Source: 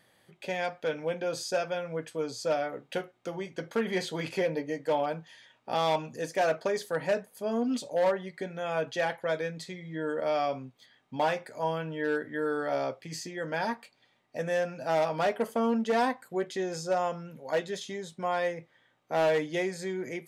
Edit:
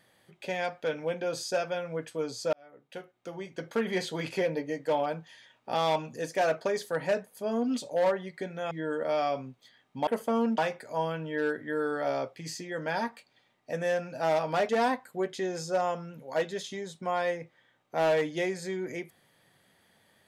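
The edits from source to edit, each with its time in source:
2.53–3.76 s: fade in
8.71–9.88 s: delete
15.35–15.86 s: move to 11.24 s

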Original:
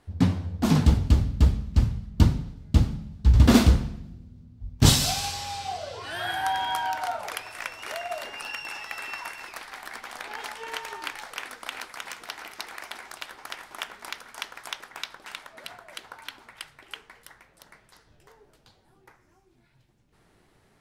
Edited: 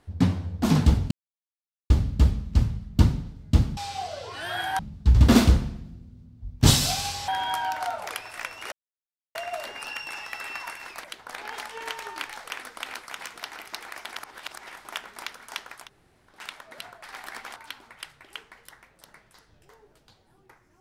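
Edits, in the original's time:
1.11 s: insert silence 0.79 s
5.47–6.49 s: move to 2.98 s
7.93 s: insert silence 0.63 s
9.62–10.15 s: swap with 15.89–16.14 s
13.02–13.53 s: reverse
14.68–15.20 s: room tone, crossfade 0.16 s

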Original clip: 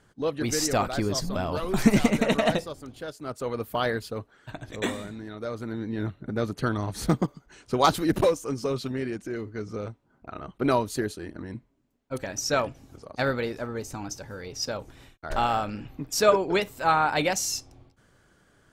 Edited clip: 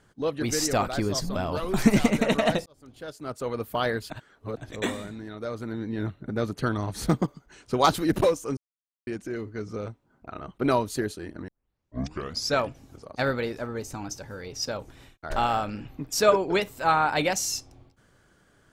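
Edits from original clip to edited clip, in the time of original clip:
2.66–3.17 s: fade in
4.10–4.57 s: reverse
8.57–9.07 s: mute
11.48 s: tape start 1.06 s

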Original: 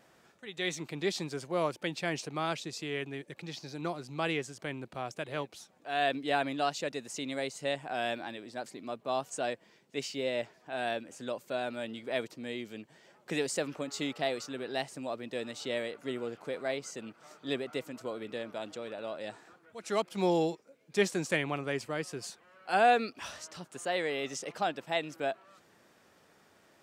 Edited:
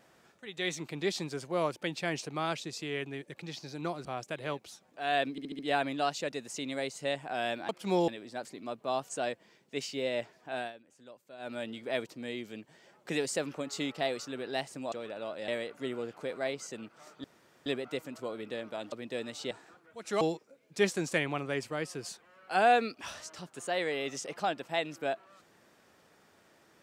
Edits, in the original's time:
4.05–4.93 s: delete
6.19 s: stutter 0.07 s, 5 plays
10.78–11.74 s: dip -15.5 dB, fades 0.15 s
15.13–15.72 s: swap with 18.74–19.30 s
17.48 s: insert room tone 0.42 s
20.00–20.39 s: move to 8.29 s

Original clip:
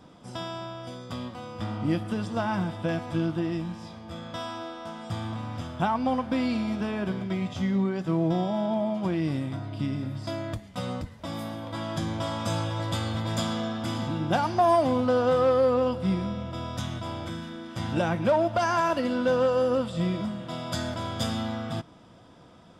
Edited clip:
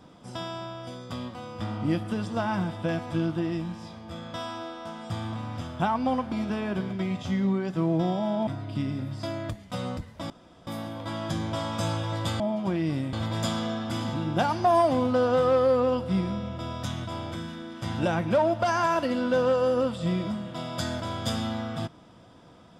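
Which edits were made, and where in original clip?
6.32–6.63 s: delete
8.78–9.51 s: move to 13.07 s
11.34 s: insert room tone 0.37 s

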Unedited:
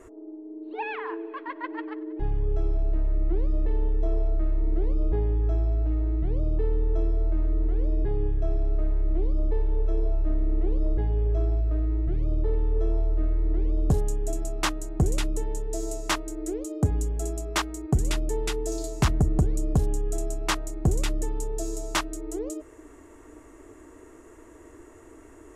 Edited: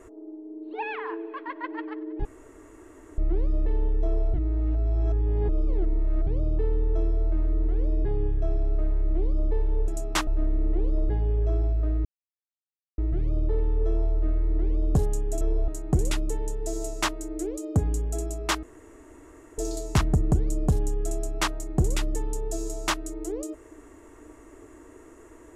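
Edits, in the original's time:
2.25–3.18 s: room tone
4.34–6.27 s: reverse
9.88–10.15 s: swap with 14.36–14.75 s
11.93 s: insert silence 0.93 s
17.70–18.65 s: room tone

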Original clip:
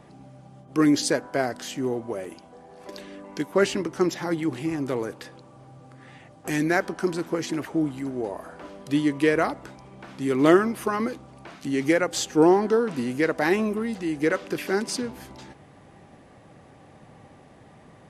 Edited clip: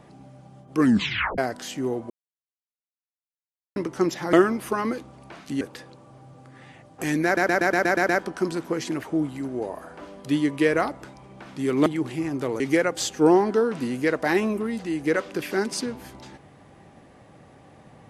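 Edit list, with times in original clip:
0.80 s: tape stop 0.58 s
2.10–3.76 s: mute
4.33–5.07 s: swap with 10.48–11.76 s
6.71 s: stutter 0.12 s, 8 plays

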